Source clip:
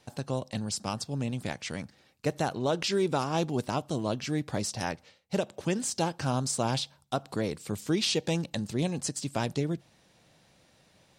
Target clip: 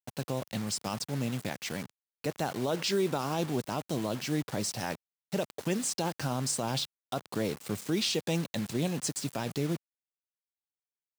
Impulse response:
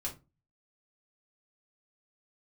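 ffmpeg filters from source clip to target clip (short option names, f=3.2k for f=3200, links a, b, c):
-af "acrusher=bits=6:mix=0:aa=0.000001,highpass=100,alimiter=limit=-20dB:level=0:latency=1:release=26"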